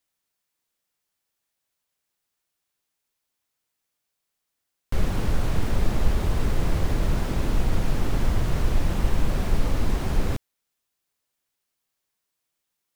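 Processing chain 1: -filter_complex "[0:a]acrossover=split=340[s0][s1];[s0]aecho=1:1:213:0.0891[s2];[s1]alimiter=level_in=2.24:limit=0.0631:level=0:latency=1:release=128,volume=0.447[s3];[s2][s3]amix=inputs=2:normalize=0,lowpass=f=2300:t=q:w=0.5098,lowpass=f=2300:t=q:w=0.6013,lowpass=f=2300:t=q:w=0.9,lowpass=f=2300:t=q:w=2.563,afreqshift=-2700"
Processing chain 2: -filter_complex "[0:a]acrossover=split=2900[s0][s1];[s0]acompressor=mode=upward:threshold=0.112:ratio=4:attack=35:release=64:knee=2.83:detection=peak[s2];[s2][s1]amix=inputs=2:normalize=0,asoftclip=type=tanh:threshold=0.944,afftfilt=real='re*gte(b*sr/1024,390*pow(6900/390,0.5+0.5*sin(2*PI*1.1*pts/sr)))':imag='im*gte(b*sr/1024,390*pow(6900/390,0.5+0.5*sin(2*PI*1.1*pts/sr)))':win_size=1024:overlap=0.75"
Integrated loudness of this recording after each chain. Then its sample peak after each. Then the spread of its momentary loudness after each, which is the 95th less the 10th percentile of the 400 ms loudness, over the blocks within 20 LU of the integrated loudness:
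-17.0 LUFS, -38.5 LUFS; -8.0 dBFS, -12.5 dBFS; 4 LU, 10 LU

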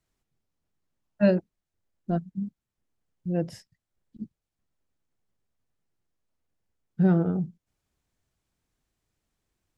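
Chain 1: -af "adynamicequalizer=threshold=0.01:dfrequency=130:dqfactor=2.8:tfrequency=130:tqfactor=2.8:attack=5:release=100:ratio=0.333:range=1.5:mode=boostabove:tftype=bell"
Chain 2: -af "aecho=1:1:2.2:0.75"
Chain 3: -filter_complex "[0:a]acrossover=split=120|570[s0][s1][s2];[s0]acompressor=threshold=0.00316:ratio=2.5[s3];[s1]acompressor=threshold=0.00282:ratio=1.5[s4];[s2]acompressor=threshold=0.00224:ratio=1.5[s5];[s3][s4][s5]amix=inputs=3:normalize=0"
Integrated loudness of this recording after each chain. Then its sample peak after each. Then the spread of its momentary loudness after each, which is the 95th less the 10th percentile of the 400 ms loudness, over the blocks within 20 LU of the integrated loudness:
-26.5 LUFS, -28.0 LUFS, -37.0 LUFS; -10.0 dBFS, -11.5 dBFS, -20.5 dBFS; 21 LU, 19 LU, 15 LU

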